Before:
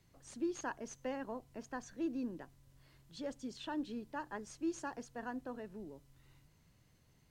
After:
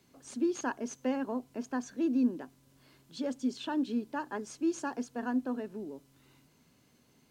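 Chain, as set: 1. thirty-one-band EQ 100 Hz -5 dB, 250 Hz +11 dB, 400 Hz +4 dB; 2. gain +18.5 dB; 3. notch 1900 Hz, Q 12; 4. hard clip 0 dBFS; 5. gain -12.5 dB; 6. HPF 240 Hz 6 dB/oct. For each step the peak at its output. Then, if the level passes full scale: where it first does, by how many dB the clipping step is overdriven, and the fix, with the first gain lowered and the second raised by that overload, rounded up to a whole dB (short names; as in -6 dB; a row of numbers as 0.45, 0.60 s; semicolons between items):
-22.0, -3.5, -3.5, -3.5, -16.0, -19.0 dBFS; no overload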